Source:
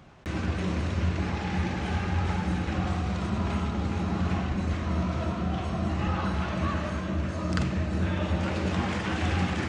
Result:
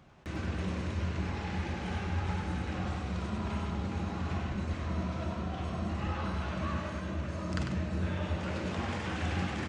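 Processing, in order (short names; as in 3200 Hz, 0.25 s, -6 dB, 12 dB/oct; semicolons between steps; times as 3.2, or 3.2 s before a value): echo 98 ms -6 dB; gain -6.5 dB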